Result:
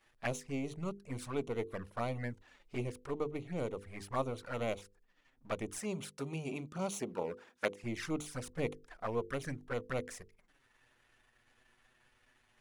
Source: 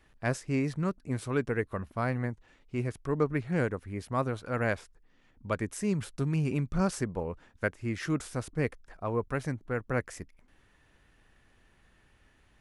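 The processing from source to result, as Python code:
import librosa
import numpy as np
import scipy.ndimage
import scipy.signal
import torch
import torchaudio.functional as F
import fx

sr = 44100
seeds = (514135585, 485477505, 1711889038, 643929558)

y = np.where(x < 0.0, 10.0 ** (-7.0 / 20.0) * x, x)
y = fx.env_flanger(y, sr, rest_ms=9.0, full_db=-30.5)
y = fx.highpass(y, sr, hz=190.0, slope=12, at=(5.78, 7.84))
y = fx.rider(y, sr, range_db=4, speed_s=0.5)
y = fx.low_shelf(y, sr, hz=330.0, db=-9.0)
y = fx.hum_notches(y, sr, base_hz=50, count=10)
y = y * 10.0 ** (3.0 / 20.0)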